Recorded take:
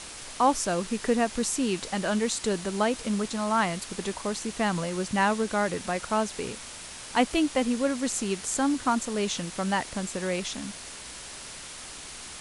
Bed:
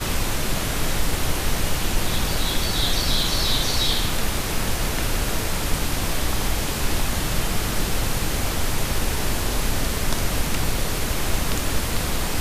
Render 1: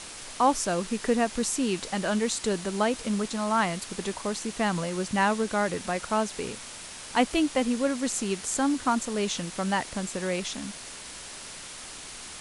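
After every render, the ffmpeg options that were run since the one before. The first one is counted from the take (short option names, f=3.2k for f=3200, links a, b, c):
-af "bandreject=f=60:t=h:w=4,bandreject=f=120:t=h:w=4"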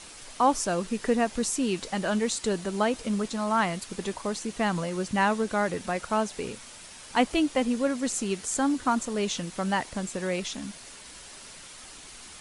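-af "afftdn=nr=6:nf=-42"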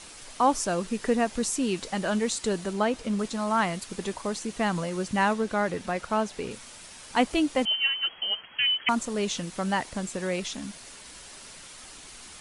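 -filter_complex "[0:a]asettb=1/sr,asplit=3[a][b][c];[a]atrim=end=2.734[d];[b]atrim=start=2.73:end=3.19,asetpts=PTS-STARTPTS,afade=t=in:d=0.004:c=qsin,afade=t=out:st=0.456:d=0.004:c=qsin,highshelf=f=6.3k:g=-7[e];[c]atrim=start=3.186[f];[d][e]acrossfade=d=0.004:c1=hsin:c2=qsin[g];[g][f]acrossfade=d=0.004:c1=qsin:c2=hsin,asettb=1/sr,asplit=3[h][i][j];[h]atrim=end=5.334[k];[i]atrim=start=5.33:end=6.51,asetpts=PTS-STARTPTS,afade=t=in:d=0.004:c=qsin,afade=t=out:st=1.176:d=0.004:c=qsin,equalizer=f=9k:t=o:w=1.3:g=-5[l];[j]atrim=start=6.506[m];[k][l]acrossfade=d=0.004:c1=hsin:c2=qsin[n];[n][m]acrossfade=d=0.004:c1=qsin:c2=hsin,asettb=1/sr,asplit=3[o][p][q];[o]atrim=end=7.654[r];[p]atrim=start=7.65:end=8.89,asetpts=PTS-STARTPTS,afade=t=in:d=0.004:c=qsin,afade=t=out:st=1.236:d=0.004:c=qsin,lowpass=f=2.8k:t=q:w=0.5098,lowpass=f=2.8k:t=q:w=0.6013,lowpass=f=2.8k:t=q:w=0.9,lowpass=f=2.8k:t=q:w=2.563,afreqshift=-3300[s];[q]atrim=start=8.886[t];[r][s]acrossfade=d=0.004:c1=hsin:c2=qsin[u];[u][t]acrossfade=d=0.004:c1=qsin:c2=hsin"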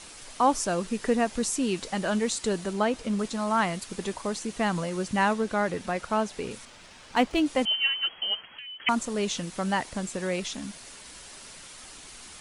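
-filter_complex "[0:a]asettb=1/sr,asplit=3[a][b][c];[a]atrim=end=6.654[d];[b]atrim=start=6.65:end=7.46,asetpts=PTS-STARTPTS,afade=t=in:d=0.004:c=qsin,afade=t=out:st=0.806:d=0.004:c=qsin,adynamicsmooth=sensitivity=6.5:basefreq=4.8k[e];[c]atrim=start=7.456[f];[d][e]acrossfade=d=0.004:c1=hsin:c2=qsin[g];[g][f]acrossfade=d=0.004:c1=qsin:c2=hsin,asettb=1/sr,asplit=3[h][i][j];[h]atrim=end=8.394[k];[i]atrim=start=8.39:end=8.8,asetpts=PTS-STARTPTS,afade=t=in:d=0.004:c=qsin,afade=t=out:st=0.406:d=0.004:c=qsin,acompressor=threshold=-40dB:ratio=6:attack=3.2:release=140:knee=1:detection=peak[l];[j]atrim=start=8.796[m];[k][l]acrossfade=d=0.004:c1=hsin:c2=qsin[n];[n][m]acrossfade=d=0.004:c1=qsin:c2=hsin"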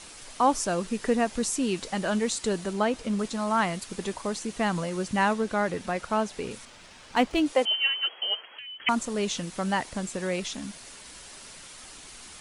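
-filter_complex "[0:a]asettb=1/sr,asplit=3[a][b][c];[a]atrim=end=7.524[d];[b]atrim=start=7.52:end=8.6,asetpts=PTS-STARTPTS,afade=t=in:d=0.004:c=qsin,afade=t=out:st=1.076:d=0.004:c=qsin,highpass=f=440:t=q:w=1.6[e];[c]atrim=start=8.596[f];[d][e]acrossfade=d=0.004:c1=hsin:c2=qsin[g];[g][f]acrossfade=d=0.004:c1=qsin:c2=hsin"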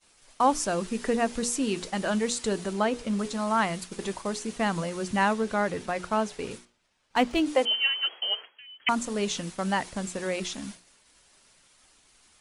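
-af "agate=range=-33dB:threshold=-35dB:ratio=3:detection=peak,bandreject=f=60:t=h:w=6,bandreject=f=120:t=h:w=6,bandreject=f=180:t=h:w=6,bandreject=f=240:t=h:w=6,bandreject=f=300:t=h:w=6,bandreject=f=360:t=h:w=6,bandreject=f=420:t=h:w=6,bandreject=f=480:t=h:w=6"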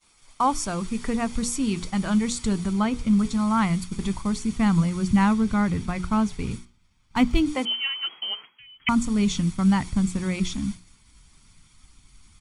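-af "aecho=1:1:0.9:0.44,asubboost=boost=7.5:cutoff=180"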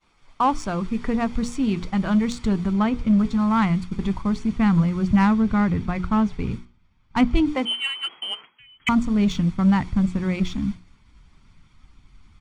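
-filter_complex "[0:a]asplit=2[a][b];[b]asoftclip=type=hard:threshold=-20.5dB,volume=-7.5dB[c];[a][c]amix=inputs=2:normalize=0,adynamicsmooth=sensitivity=1:basefreq=3k"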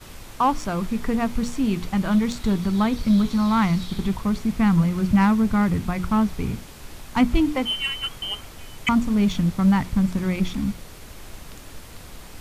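-filter_complex "[1:a]volume=-17.5dB[a];[0:a][a]amix=inputs=2:normalize=0"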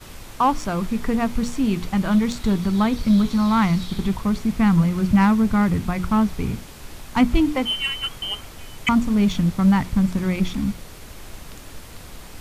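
-af "volume=1.5dB"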